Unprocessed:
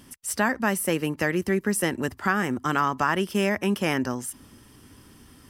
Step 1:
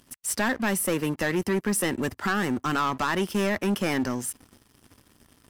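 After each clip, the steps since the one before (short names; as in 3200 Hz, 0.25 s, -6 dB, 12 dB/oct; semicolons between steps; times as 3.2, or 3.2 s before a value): sample leveller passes 3; gain -9 dB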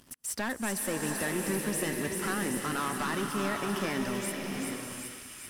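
compressor 1.5:1, threshold -45 dBFS, peak gain reduction 8 dB; thin delay 0.388 s, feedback 73%, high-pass 2600 Hz, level -4.5 dB; bloom reverb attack 0.75 s, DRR 1.5 dB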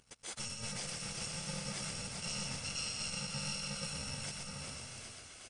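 FFT order left unsorted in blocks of 128 samples; echo 0.123 s -4 dB; gain -5 dB; MP3 80 kbps 22050 Hz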